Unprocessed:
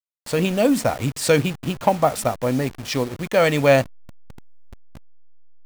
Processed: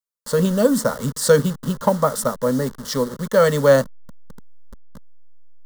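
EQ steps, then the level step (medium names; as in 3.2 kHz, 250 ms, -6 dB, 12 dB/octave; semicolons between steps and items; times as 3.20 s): static phaser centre 490 Hz, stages 8; +4.0 dB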